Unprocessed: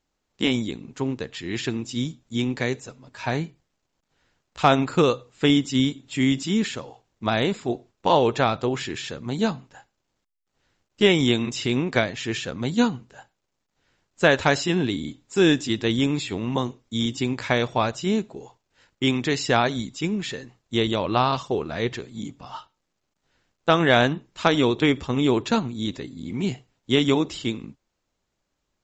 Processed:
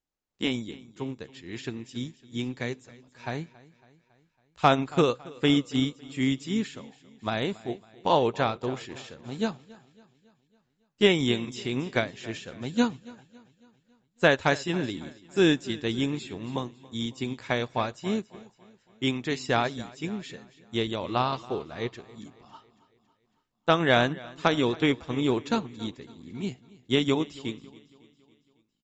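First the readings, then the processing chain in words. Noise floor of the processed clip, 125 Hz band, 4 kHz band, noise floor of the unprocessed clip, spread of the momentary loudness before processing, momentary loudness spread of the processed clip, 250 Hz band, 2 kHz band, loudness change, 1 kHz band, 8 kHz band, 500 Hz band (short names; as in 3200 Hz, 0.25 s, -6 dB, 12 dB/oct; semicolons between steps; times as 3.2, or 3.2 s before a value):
-73 dBFS, -5.5 dB, -5.0 dB, -78 dBFS, 12 LU, 15 LU, -5.0 dB, -4.5 dB, -4.5 dB, -4.0 dB, -8.0 dB, -4.5 dB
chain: feedback echo 0.277 s, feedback 56%, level -15 dB; upward expander 1.5:1, over -37 dBFS; gain -2 dB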